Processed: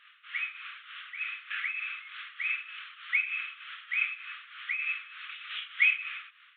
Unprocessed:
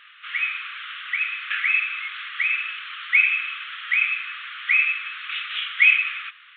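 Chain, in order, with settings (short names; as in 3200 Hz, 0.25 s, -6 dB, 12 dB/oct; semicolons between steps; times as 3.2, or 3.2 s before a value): tremolo triangle 3.3 Hz, depth 75%; gain -7 dB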